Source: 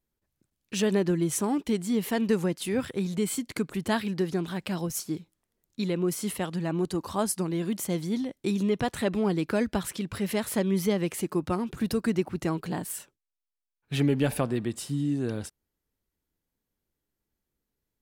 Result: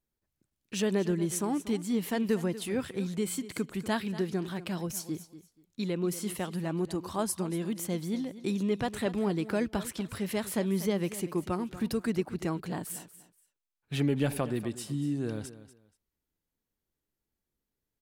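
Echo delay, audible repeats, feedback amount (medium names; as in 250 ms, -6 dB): 239 ms, 2, 21%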